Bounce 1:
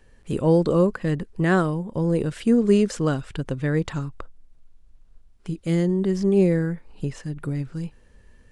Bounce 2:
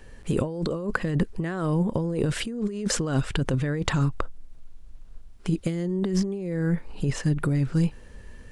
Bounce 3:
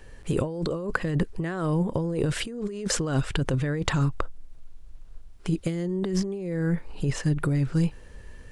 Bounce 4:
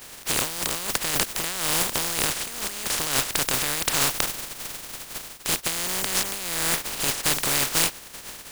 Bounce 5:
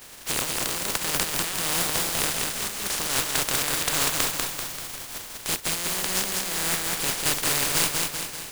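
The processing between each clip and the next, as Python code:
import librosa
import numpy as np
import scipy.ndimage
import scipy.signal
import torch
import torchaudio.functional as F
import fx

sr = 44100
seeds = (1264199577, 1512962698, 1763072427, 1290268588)

y1 = fx.over_compress(x, sr, threshold_db=-28.0, ratio=-1.0)
y1 = F.gain(torch.from_numpy(y1), 2.5).numpy()
y2 = fx.peak_eq(y1, sr, hz=220.0, db=-6.5, octaves=0.31)
y3 = fx.spec_flatten(y2, sr, power=0.13)
y3 = F.gain(torch.from_numpy(y3), 1.0).numpy()
y4 = fx.echo_feedback(y3, sr, ms=194, feedback_pct=53, wet_db=-3.0)
y4 = F.gain(torch.from_numpy(y4), -2.5).numpy()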